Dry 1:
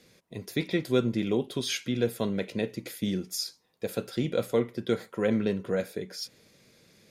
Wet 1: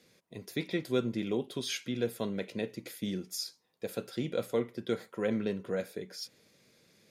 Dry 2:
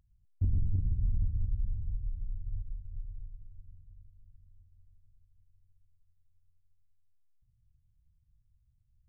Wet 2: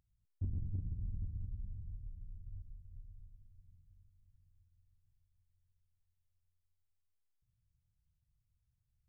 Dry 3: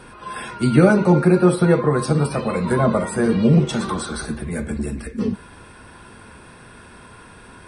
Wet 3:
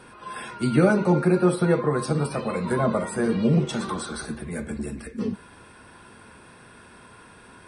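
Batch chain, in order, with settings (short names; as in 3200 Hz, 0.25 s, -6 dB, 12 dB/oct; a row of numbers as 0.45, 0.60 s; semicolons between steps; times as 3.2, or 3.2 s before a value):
low shelf 71 Hz -10 dB; gain -4.5 dB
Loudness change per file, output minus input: -5.0, -9.0, -5.5 LU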